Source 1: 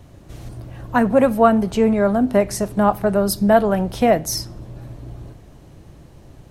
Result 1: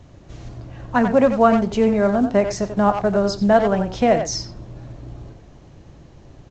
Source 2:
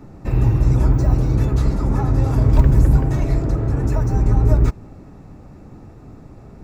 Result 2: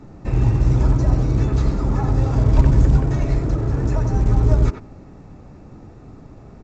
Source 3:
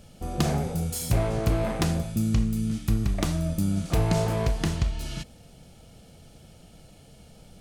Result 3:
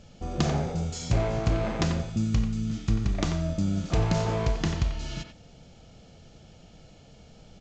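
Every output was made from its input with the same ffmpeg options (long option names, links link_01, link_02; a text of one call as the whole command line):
ffmpeg -i in.wav -filter_complex "[0:a]asplit=2[link_01][link_02];[link_02]adelay=90,highpass=300,lowpass=3400,asoftclip=type=hard:threshold=-9.5dB,volume=-7dB[link_03];[link_01][link_03]amix=inputs=2:normalize=0,volume=-1dB" -ar 16000 -c:a pcm_mulaw out.wav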